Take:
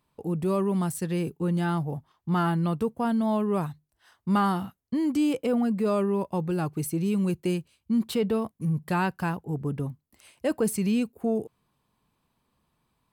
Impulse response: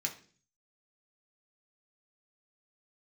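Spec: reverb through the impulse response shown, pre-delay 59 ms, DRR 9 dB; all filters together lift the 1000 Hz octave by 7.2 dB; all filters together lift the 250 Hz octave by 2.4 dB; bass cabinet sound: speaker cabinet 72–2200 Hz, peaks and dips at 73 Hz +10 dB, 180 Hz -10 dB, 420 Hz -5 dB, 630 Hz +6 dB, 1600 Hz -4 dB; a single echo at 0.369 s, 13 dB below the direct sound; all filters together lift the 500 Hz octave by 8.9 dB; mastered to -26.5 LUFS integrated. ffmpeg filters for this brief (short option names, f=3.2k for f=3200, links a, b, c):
-filter_complex "[0:a]equalizer=f=250:t=o:g=4.5,equalizer=f=500:t=o:g=9,equalizer=f=1k:t=o:g=5,aecho=1:1:369:0.224,asplit=2[a][b];[1:a]atrim=start_sample=2205,adelay=59[c];[b][c]afir=irnorm=-1:irlink=0,volume=-11dB[d];[a][d]amix=inputs=2:normalize=0,highpass=f=72:w=0.5412,highpass=f=72:w=1.3066,equalizer=f=73:t=q:w=4:g=10,equalizer=f=180:t=q:w=4:g=-10,equalizer=f=420:t=q:w=4:g=-5,equalizer=f=630:t=q:w=4:g=6,equalizer=f=1.6k:t=q:w=4:g=-4,lowpass=f=2.2k:w=0.5412,lowpass=f=2.2k:w=1.3066,volume=-4dB"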